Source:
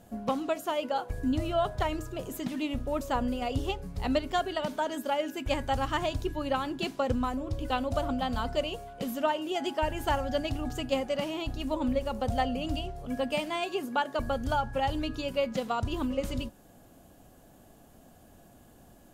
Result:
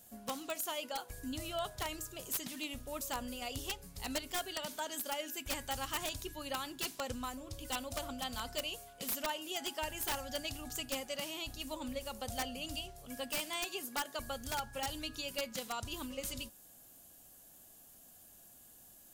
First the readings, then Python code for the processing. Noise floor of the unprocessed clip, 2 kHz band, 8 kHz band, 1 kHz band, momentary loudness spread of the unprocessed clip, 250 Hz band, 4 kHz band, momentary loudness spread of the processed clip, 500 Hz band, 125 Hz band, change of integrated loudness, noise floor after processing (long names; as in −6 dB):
−56 dBFS, −5.5 dB, +7.0 dB, −10.5 dB, 5 LU, −13.0 dB, −1.5 dB, 18 LU, −12.5 dB, −14.0 dB, −8.0 dB, −59 dBFS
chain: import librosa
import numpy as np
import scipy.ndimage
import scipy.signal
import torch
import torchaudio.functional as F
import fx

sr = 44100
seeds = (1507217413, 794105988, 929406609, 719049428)

y = fx.vibrato(x, sr, rate_hz=3.2, depth_cents=5.5)
y = F.preemphasis(torch.from_numpy(y), 0.9).numpy()
y = (np.mod(10.0 ** (33.5 / 20.0) * y + 1.0, 2.0) - 1.0) / 10.0 ** (33.5 / 20.0)
y = y * librosa.db_to_amplitude(6.0)